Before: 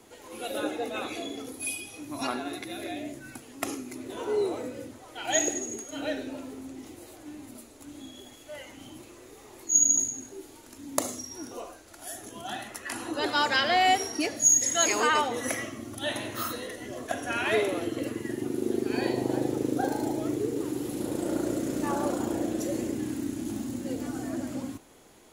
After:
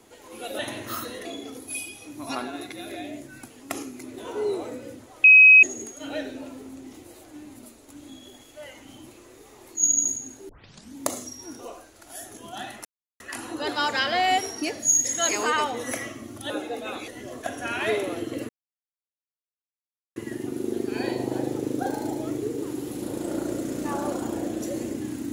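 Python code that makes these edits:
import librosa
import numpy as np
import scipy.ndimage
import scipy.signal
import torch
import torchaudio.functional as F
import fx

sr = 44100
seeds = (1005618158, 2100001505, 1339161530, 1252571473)

y = fx.edit(x, sr, fx.swap(start_s=0.59, length_s=0.58, other_s=16.07, other_length_s=0.66),
    fx.bleep(start_s=5.16, length_s=0.39, hz=2540.0, db=-8.0),
    fx.tape_start(start_s=10.41, length_s=0.46),
    fx.insert_silence(at_s=12.77, length_s=0.35),
    fx.insert_silence(at_s=18.14, length_s=1.67), tone=tone)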